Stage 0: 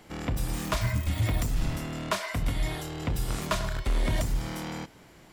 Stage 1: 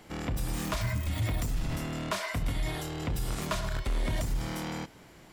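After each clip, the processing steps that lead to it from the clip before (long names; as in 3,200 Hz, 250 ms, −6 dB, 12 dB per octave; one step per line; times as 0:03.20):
brickwall limiter −23 dBFS, peak gain reduction 5.5 dB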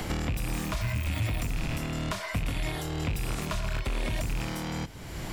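loose part that buzzes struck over −32 dBFS, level −28 dBFS
multiband upward and downward compressor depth 100%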